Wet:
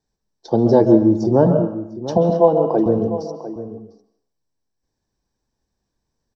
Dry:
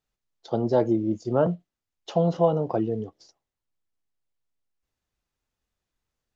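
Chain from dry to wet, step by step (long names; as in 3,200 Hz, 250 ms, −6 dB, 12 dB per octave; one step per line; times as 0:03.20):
0:02.17–0:02.86: band-pass filter 280–3,800 Hz
slap from a distant wall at 120 metres, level −13 dB
convolution reverb RT60 0.75 s, pre-delay 126 ms, DRR 6.5 dB
level −2.5 dB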